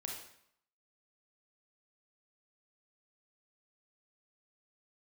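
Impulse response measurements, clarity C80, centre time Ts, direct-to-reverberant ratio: 6.5 dB, 44 ms, −0.5 dB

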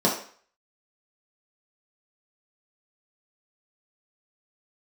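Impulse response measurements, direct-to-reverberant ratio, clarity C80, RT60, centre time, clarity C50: −4.5 dB, 10.5 dB, 0.50 s, 30 ms, 6.5 dB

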